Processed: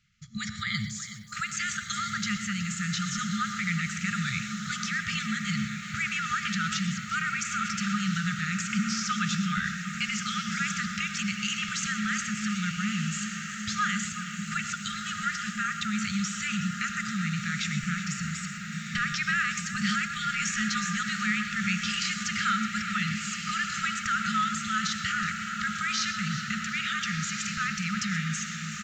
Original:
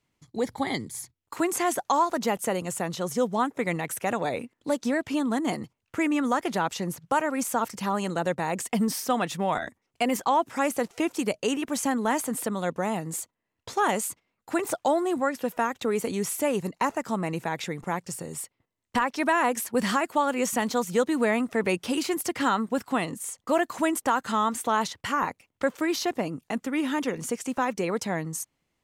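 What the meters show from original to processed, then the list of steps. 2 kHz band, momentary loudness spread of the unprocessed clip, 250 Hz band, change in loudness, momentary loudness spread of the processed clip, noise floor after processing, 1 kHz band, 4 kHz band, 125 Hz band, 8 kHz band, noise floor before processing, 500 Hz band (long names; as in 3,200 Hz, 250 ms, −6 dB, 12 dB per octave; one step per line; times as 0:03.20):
+4.5 dB, 8 LU, −3.5 dB, −2.0 dB, 5 LU, −38 dBFS, −5.5 dB, +5.5 dB, +5.0 dB, +1.0 dB, −80 dBFS, below −40 dB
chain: brick-wall band-stop 220–1,200 Hz
in parallel at −2 dB: compressor whose output falls as the input rises −39 dBFS, ratio −1
on the sum: feedback delay with all-pass diffusion 1,450 ms, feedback 54%, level −6.5 dB
reverb whose tail is shaped and stops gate 150 ms rising, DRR 9.5 dB
downsampling to 16,000 Hz
feedback echo at a low word length 371 ms, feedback 55%, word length 9 bits, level −13 dB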